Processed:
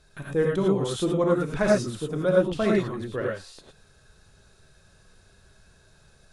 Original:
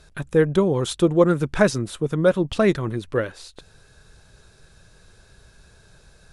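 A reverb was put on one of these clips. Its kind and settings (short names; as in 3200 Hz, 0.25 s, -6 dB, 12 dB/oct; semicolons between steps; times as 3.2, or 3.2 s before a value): non-linear reverb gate 0.13 s rising, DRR -2.5 dB; gain -8.5 dB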